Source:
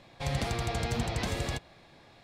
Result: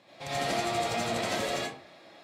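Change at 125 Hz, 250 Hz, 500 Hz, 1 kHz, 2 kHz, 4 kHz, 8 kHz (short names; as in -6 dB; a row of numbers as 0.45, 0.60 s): -9.0, 0.0, +5.5, +6.0, +3.5, +4.0, +3.5 dB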